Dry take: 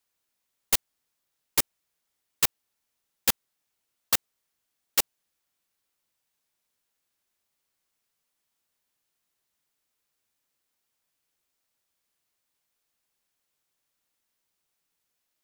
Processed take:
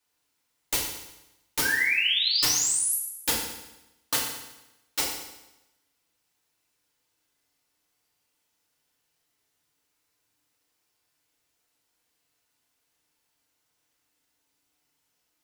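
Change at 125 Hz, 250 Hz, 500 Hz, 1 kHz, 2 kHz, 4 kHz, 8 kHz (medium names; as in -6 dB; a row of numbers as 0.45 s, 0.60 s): +2.0 dB, +3.5 dB, +1.5 dB, +1.5 dB, +11.0 dB, +8.0 dB, +5.0 dB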